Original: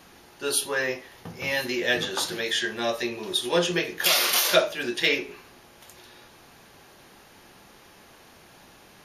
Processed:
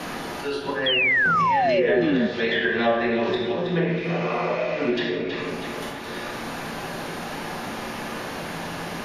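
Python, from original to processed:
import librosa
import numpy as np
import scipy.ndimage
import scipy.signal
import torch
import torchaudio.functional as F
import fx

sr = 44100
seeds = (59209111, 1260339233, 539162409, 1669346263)

y = fx.env_lowpass_down(x, sr, base_hz=740.0, full_db=-19.0)
y = fx.auto_swell(y, sr, attack_ms=370.0)
y = fx.spec_repair(y, sr, seeds[0], start_s=3.98, length_s=0.93, low_hz=1500.0, high_hz=7900.0, source='before')
y = fx.room_shoebox(y, sr, seeds[1], volume_m3=280.0, walls='mixed', distance_m=1.9)
y = fx.env_lowpass_down(y, sr, base_hz=2400.0, full_db=-19.5)
y = fx.echo_feedback(y, sr, ms=320, feedback_pct=36, wet_db=-10.5)
y = fx.spec_paint(y, sr, seeds[2], shape='fall', start_s=0.86, length_s=1.41, low_hz=210.0, high_hz=3400.0, level_db=-21.0)
y = fx.band_squash(y, sr, depth_pct=70)
y = y * 10.0 ** (2.5 / 20.0)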